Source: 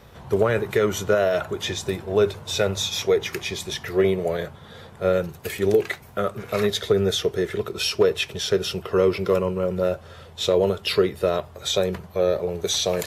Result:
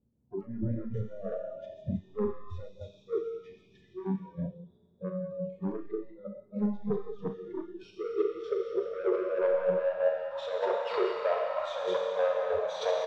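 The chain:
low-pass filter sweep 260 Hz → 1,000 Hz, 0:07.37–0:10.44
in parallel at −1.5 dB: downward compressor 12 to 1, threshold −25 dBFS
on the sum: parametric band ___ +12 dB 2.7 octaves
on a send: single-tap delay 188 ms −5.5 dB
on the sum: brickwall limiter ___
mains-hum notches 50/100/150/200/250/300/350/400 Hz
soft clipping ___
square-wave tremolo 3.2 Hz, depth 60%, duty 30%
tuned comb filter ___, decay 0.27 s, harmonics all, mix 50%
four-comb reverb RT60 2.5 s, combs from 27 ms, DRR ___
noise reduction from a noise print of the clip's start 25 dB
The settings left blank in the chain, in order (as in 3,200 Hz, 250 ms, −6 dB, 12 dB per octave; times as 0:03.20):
6,700 Hz, −9 dBFS, −15.5 dBFS, 930 Hz, −0.5 dB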